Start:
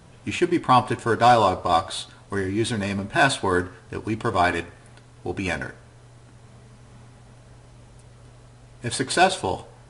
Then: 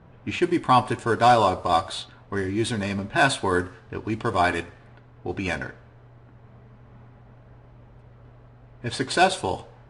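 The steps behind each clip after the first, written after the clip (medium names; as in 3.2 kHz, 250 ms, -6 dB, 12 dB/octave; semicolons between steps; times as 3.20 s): level-controlled noise filter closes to 1.7 kHz, open at -19 dBFS; trim -1 dB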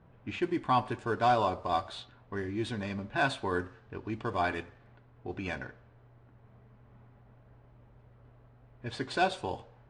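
distance through air 80 m; trim -8.5 dB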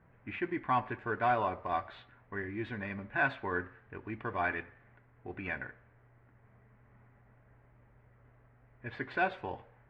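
resonant low-pass 2 kHz, resonance Q 2.9; trim -5 dB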